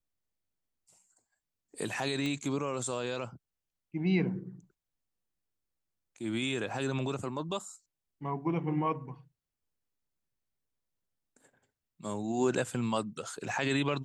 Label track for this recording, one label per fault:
2.260000	2.260000	pop -22 dBFS

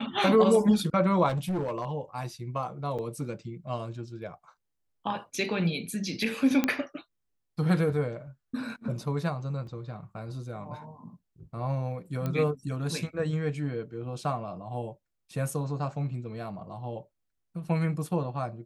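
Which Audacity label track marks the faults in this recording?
1.280000	1.910000	clipped -26 dBFS
2.980000	2.990000	dropout 6.7 ms
6.640000	6.640000	pop -11 dBFS
9.670000	9.670000	dropout 2.7 ms
12.260000	12.260000	pop -19 dBFS

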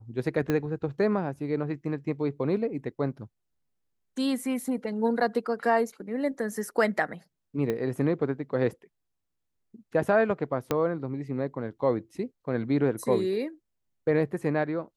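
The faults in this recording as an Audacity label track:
0.500000	0.500000	pop -14 dBFS
7.700000	7.700000	pop -17 dBFS
10.710000	10.710000	pop -12 dBFS

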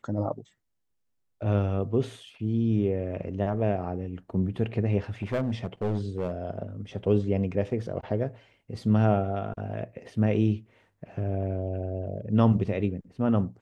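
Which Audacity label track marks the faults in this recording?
5.220000	6.310000	clipped -23 dBFS

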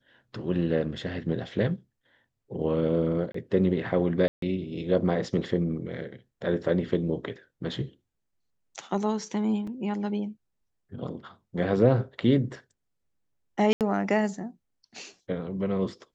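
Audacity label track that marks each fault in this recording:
3.320000	3.340000	dropout 24 ms
4.280000	4.420000	dropout 143 ms
9.670000	9.670000	dropout 4.2 ms
13.730000	13.810000	dropout 78 ms

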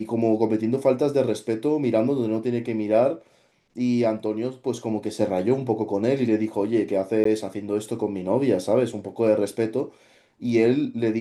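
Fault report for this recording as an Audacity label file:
7.240000	7.250000	dropout

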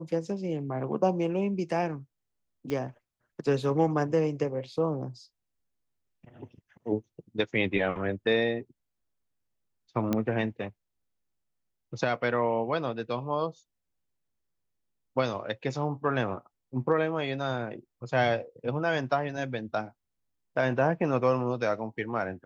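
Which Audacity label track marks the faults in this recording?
2.700000	2.700000	pop -20 dBFS
10.130000	10.130000	pop -14 dBFS

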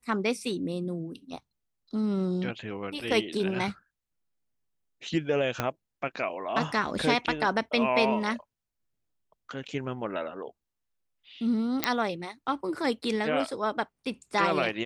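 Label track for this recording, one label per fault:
5.600000	5.600000	pop -12 dBFS
11.840000	11.840000	pop -6 dBFS

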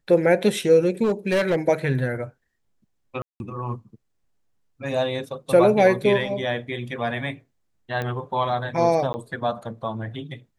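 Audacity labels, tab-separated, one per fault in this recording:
1.030000	1.560000	clipped -16.5 dBFS
3.220000	3.400000	dropout 181 ms
8.020000	8.020000	pop -16 dBFS
9.130000	9.140000	dropout 10 ms

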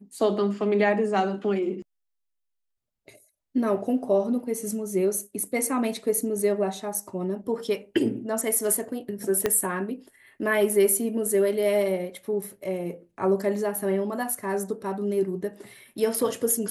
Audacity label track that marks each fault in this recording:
9.460000	9.460000	pop -9 dBFS

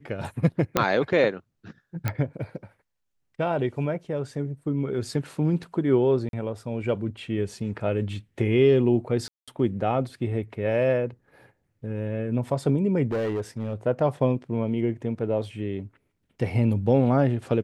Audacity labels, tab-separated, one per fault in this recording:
0.770000	0.770000	pop -5 dBFS
2.080000	2.080000	pop -12 dBFS
6.290000	6.330000	dropout 42 ms
9.280000	9.480000	dropout 196 ms
13.120000	13.740000	clipped -23 dBFS

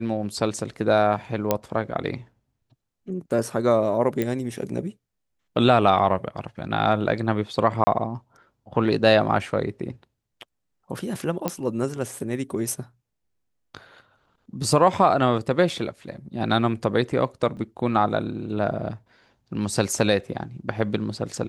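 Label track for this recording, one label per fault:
1.510000	1.510000	pop -6 dBFS
4.220000	4.220000	pop -12 dBFS
7.840000	7.870000	dropout 30 ms
11.480000	11.480000	pop -9 dBFS
17.570000	17.570000	dropout 3.2 ms

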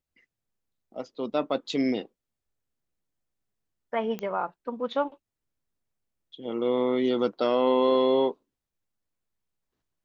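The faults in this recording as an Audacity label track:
4.190000	4.190000	pop -20 dBFS

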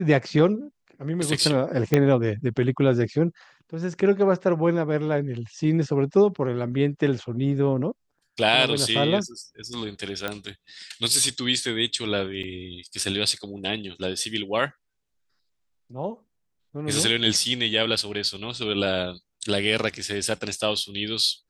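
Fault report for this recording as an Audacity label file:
1.940000	1.940000	pop -6 dBFS
10.280000	10.280000	pop -14 dBFS
12.430000	12.430000	dropout 4.4 ms

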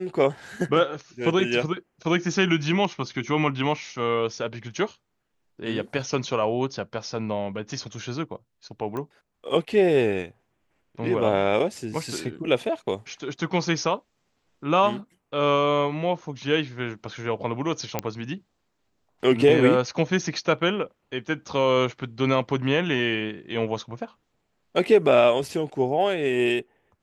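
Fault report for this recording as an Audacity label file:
8.970000	8.970000	pop -20 dBFS
17.990000	17.990000	pop -9 dBFS

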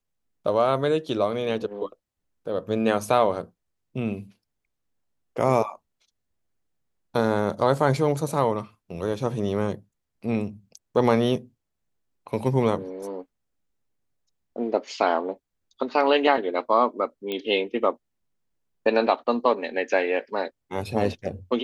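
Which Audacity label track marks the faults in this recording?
17.320000	17.320000	pop -17 dBFS

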